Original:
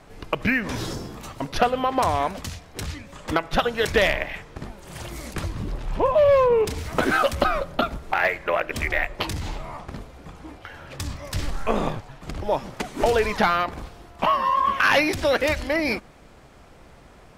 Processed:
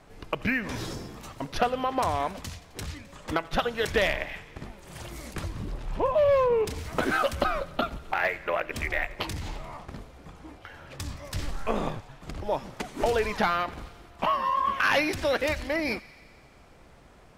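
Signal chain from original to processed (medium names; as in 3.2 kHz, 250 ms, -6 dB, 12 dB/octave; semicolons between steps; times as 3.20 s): feedback echo behind a high-pass 87 ms, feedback 74%, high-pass 1.7 kHz, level -19 dB; trim -5 dB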